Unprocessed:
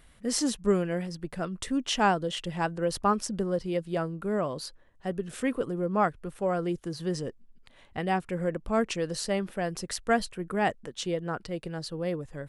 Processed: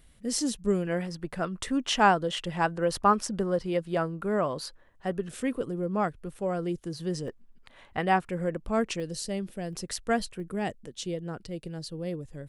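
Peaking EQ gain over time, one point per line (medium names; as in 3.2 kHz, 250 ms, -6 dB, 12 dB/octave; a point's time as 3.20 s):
peaking EQ 1.2 kHz 2.2 oct
-7.5 dB
from 0.87 s +4 dB
from 5.29 s -4.5 dB
from 7.28 s +6 dB
from 8.25 s -1.5 dB
from 9.00 s -12.5 dB
from 9.73 s -3.5 dB
from 10.40 s -10 dB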